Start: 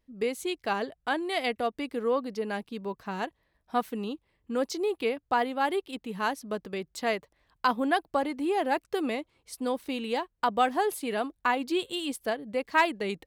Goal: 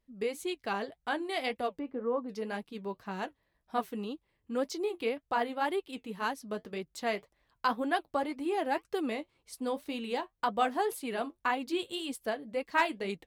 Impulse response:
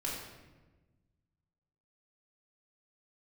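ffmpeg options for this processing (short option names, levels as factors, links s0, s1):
-filter_complex "[0:a]flanger=delay=4.9:depth=5.3:regen=-55:speed=1.9:shape=sinusoidal,asplit=3[s0][s1][s2];[s0]afade=t=out:st=1.78:d=0.02[s3];[s1]lowpass=1200,afade=t=in:st=1.78:d=0.02,afade=t=out:st=2.28:d=0.02[s4];[s2]afade=t=in:st=2.28:d=0.02[s5];[s3][s4][s5]amix=inputs=3:normalize=0"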